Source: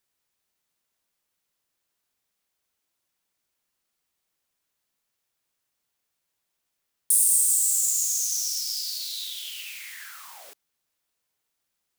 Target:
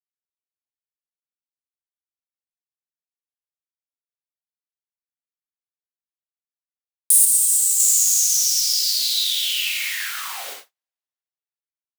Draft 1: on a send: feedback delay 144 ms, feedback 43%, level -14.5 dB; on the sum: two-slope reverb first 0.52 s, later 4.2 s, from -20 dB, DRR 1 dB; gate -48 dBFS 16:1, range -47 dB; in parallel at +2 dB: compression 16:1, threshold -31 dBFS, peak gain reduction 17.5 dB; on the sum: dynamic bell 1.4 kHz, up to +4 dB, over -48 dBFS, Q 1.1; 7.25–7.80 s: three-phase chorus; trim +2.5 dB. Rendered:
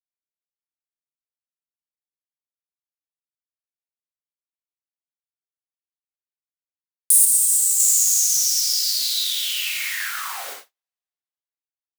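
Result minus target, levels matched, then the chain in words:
1 kHz band +3.0 dB
on a send: feedback delay 144 ms, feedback 43%, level -14.5 dB; on the sum: two-slope reverb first 0.52 s, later 4.2 s, from -20 dB, DRR 1 dB; gate -48 dBFS 16:1, range -47 dB; in parallel at +2 dB: compression 16:1, threshold -31 dBFS, peak gain reduction 17.5 dB; on the sum: dynamic bell 3 kHz, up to +4 dB, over -48 dBFS, Q 1.1; 7.25–7.80 s: three-phase chorus; trim +2.5 dB

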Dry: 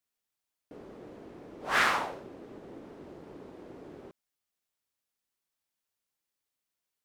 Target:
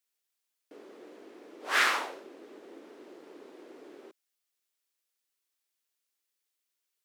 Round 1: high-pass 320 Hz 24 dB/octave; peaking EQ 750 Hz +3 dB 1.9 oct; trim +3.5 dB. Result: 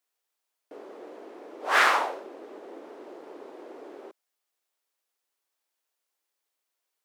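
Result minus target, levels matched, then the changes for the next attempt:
1 kHz band +3.5 dB
change: peaking EQ 750 Hz -7.5 dB 1.9 oct

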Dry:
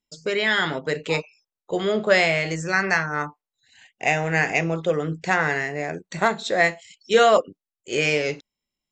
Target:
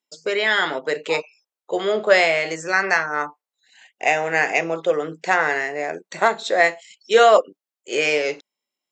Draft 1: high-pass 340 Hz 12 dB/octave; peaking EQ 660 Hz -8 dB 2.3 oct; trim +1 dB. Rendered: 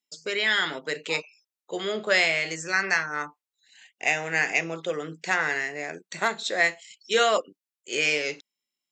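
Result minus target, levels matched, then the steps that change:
500 Hz band -4.5 dB
change: peaking EQ 660 Hz +3 dB 2.3 oct

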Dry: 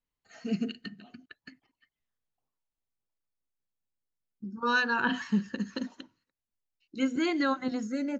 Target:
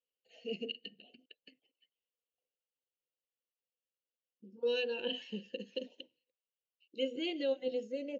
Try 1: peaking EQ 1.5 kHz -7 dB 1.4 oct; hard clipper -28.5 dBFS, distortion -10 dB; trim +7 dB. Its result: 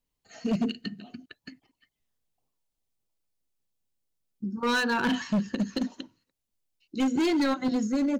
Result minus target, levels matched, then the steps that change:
1 kHz band +13.5 dB
add first: two resonant band-passes 1.2 kHz, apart 2.5 oct

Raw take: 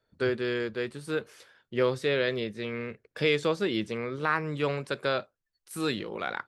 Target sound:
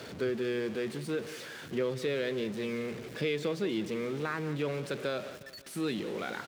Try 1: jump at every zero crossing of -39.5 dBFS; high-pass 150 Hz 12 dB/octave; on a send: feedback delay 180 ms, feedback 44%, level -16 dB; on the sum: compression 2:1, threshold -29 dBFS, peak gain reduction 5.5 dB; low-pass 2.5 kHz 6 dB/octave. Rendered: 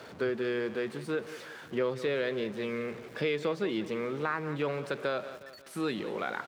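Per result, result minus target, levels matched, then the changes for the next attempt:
jump at every zero crossing: distortion -6 dB; 1 kHz band +3.5 dB
change: jump at every zero crossing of -32.5 dBFS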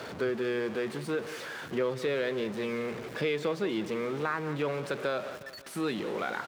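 1 kHz band +4.0 dB
add after high-pass: peaking EQ 990 Hz -8.5 dB 1.9 oct

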